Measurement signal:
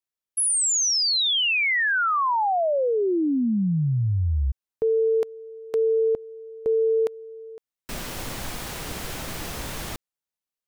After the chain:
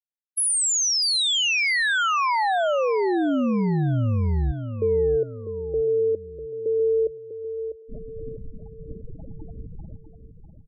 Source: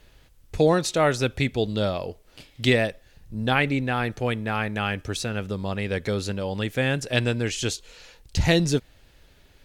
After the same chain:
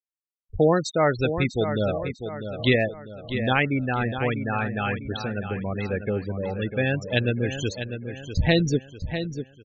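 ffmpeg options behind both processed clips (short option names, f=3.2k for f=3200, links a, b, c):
-filter_complex "[0:a]afftfilt=real='re*gte(hypot(re,im),0.0794)':imag='im*gte(hypot(re,im),0.0794)':win_size=1024:overlap=0.75,asplit=2[a][b];[b]adelay=648,lowpass=f=5k:p=1,volume=-9dB,asplit=2[c][d];[d]adelay=648,lowpass=f=5k:p=1,volume=0.45,asplit=2[e][f];[f]adelay=648,lowpass=f=5k:p=1,volume=0.45,asplit=2[g][h];[h]adelay=648,lowpass=f=5k:p=1,volume=0.45,asplit=2[i][j];[j]adelay=648,lowpass=f=5k:p=1,volume=0.45[k];[a][c][e][g][i][k]amix=inputs=6:normalize=0"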